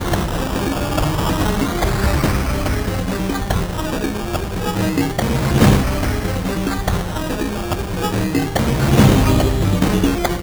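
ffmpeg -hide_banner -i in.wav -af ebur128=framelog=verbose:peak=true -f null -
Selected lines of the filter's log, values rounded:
Integrated loudness:
  I:         -18.4 LUFS
  Threshold: -28.4 LUFS
Loudness range:
  LRA:         3.2 LU
  Threshold: -38.9 LUFS
  LRA low:   -20.4 LUFS
  LRA high:  -17.1 LUFS
True peak:
  Peak:       -0.6 dBFS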